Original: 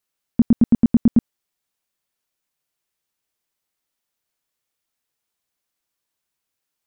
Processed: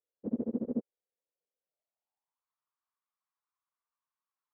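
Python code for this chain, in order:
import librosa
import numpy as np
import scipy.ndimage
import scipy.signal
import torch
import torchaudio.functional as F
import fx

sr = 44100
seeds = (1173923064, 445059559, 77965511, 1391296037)

y = fx.filter_sweep_bandpass(x, sr, from_hz=490.0, to_hz=1100.0, start_s=2.35, end_s=3.82, q=5.2)
y = fx.stretch_vocoder_free(y, sr, factor=0.66)
y = y * 10.0 ** (4.5 / 20.0)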